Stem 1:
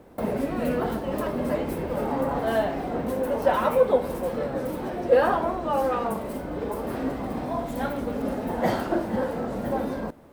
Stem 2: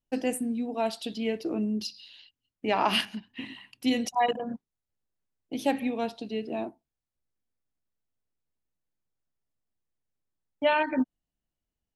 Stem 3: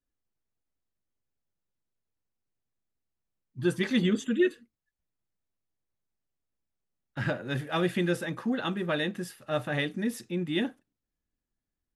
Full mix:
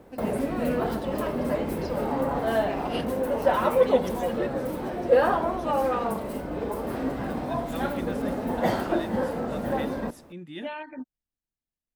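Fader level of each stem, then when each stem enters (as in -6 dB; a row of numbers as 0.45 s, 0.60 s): -0.5 dB, -12.0 dB, -10.0 dB; 0.00 s, 0.00 s, 0.00 s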